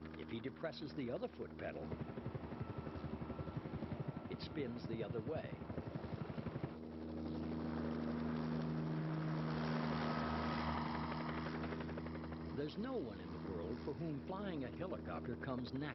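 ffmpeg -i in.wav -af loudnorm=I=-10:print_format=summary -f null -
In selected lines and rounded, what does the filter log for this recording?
Input Integrated:    -44.5 LUFS
Input True Peak:     -27.8 dBTP
Input LRA:             4.8 LU
Input Threshold:     -54.5 LUFS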